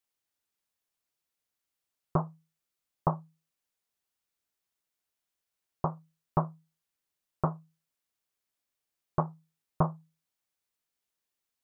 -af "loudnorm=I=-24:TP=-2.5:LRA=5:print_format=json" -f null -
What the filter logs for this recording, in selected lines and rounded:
"input_i" : "-34.2",
"input_tp" : "-13.2",
"input_lra" : "2.0",
"input_thresh" : "-45.1",